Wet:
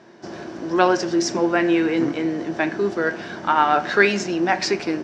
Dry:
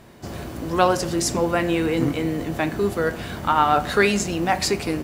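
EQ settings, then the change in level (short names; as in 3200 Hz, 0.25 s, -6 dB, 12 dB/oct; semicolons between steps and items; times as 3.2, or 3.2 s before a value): dynamic EQ 2300 Hz, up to +5 dB, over -35 dBFS, Q 1.5; speaker cabinet 180–6200 Hz, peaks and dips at 190 Hz +4 dB, 350 Hz +10 dB, 650 Hz +5 dB, 920 Hz +4 dB, 1600 Hz +8 dB, 5600 Hz +8 dB; -4.0 dB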